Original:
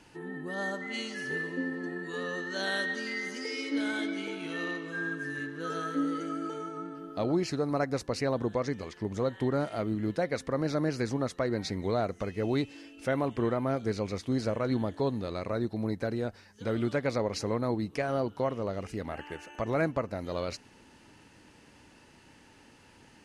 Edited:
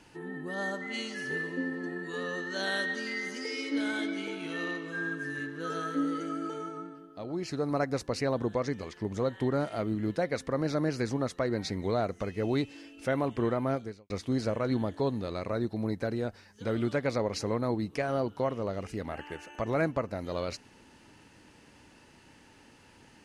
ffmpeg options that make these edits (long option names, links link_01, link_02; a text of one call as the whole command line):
ffmpeg -i in.wav -filter_complex "[0:a]asplit=4[link_01][link_02][link_03][link_04];[link_01]atrim=end=7.08,asetpts=PTS-STARTPTS,afade=type=out:start_time=6.69:duration=0.39:silence=0.334965[link_05];[link_02]atrim=start=7.08:end=7.29,asetpts=PTS-STARTPTS,volume=-9.5dB[link_06];[link_03]atrim=start=7.29:end=14.1,asetpts=PTS-STARTPTS,afade=type=in:duration=0.39:silence=0.334965,afade=type=out:start_time=6.45:duration=0.36:curve=qua[link_07];[link_04]atrim=start=14.1,asetpts=PTS-STARTPTS,afade=type=in:duration=0.004:curve=hsin[link_08];[link_05][link_06][link_07][link_08]concat=n=4:v=0:a=1" out.wav